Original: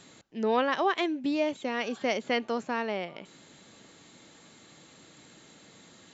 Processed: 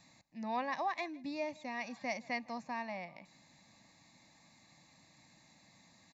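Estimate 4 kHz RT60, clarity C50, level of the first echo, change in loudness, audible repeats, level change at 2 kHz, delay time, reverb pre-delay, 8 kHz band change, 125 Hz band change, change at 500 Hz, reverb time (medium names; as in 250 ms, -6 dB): no reverb, no reverb, -24.0 dB, -10.0 dB, 1, -8.0 dB, 160 ms, no reverb, no reading, -8.5 dB, -13.5 dB, no reverb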